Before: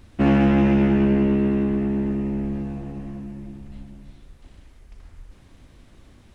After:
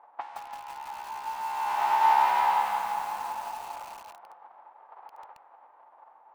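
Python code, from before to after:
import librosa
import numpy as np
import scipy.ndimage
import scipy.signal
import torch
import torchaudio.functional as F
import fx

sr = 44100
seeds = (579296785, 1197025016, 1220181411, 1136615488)

y = fx.envelope_flatten(x, sr, power=0.1)
y = fx.env_lowpass(y, sr, base_hz=800.0, full_db=-16.0)
y = fx.dynamic_eq(y, sr, hz=940.0, q=4.3, threshold_db=-42.0, ratio=4.0, max_db=4)
y = fx.over_compress(y, sr, threshold_db=-26.0, ratio=-0.5)
y = fx.ladder_bandpass(y, sr, hz=910.0, resonance_pct=80)
y = fx.rev_schroeder(y, sr, rt60_s=2.9, comb_ms=33, drr_db=8.0)
y = fx.echo_crushed(y, sr, ms=169, feedback_pct=55, bits=8, wet_db=-4)
y = y * 10.0 ** (5.0 / 20.0)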